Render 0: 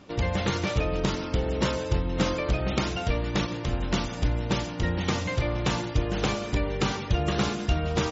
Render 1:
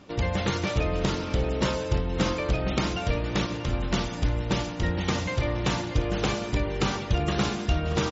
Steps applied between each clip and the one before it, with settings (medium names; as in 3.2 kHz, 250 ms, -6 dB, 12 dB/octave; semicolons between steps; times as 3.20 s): delay 635 ms -11 dB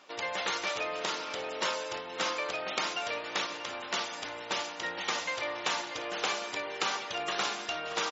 high-pass 730 Hz 12 dB/octave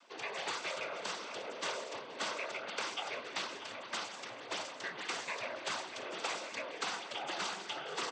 noise-vocoded speech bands 16; trim -5.5 dB